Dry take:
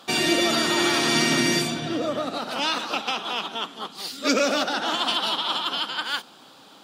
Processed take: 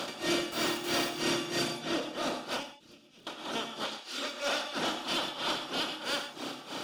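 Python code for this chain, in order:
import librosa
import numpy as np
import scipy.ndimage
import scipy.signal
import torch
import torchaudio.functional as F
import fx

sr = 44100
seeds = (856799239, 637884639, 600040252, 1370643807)

y = fx.bin_compress(x, sr, power=0.4)
y = fx.weighting(y, sr, curve='A', at=(3.84, 4.75))
y = fx.dereverb_blind(y, sr, rt60_s=0.85)
y = fx.tone_stack(y, sr, knobs='10-0-1', at=(2.63, 3.27))
y = fx.dmg_crackle(y, sr, seeds[0], per_s=61.0, level_db=-42.0)
y = fx.chorus_voices(y, sr, voices=6, hz=0.32, base_ms=30, depth_ms=1.8, mix_pct=35)
y = 10.0 ** (-17.0 / 20.0) * np.tanh(y / 10.0 ** (-17.0 / 20.0))
y = y * (1.0 - 0.97 / 2.0 + 0.97 / 2.0 * np.cos(2.0 * np.pi * 3.1 * (np.arange(len(y)) / sr)))
y = fx.quant_dither(y, sr, seeds[1], bits=6, dither='none', at=(0.47, 1.13))
y = fx.rev_gated(y, sr, seeds[2], gate_ms=150, shape='rising', drr_db=7.5)
y = fx.end_taper(y, sr, db_per_s=110.0)
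y = y * librosa.db_to_amplitude(-5.0)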